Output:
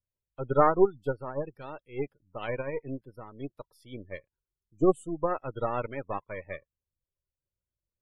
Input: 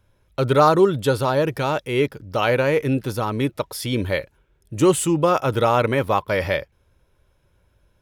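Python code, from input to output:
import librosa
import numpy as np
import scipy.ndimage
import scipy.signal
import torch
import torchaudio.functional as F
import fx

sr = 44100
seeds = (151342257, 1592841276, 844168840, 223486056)

y = np.where(x < 0.0, 10.0 ** (-7.0 / 20.0) * x, x)
y = fx.spec_gate(y, sr, threshold_db=-20, keep='strong')
y = fx.upward_expand(y, sr, threshold_db=-31.0, expansion=2.5)
y = y * 10.0 ** (-1.5 / 20.0)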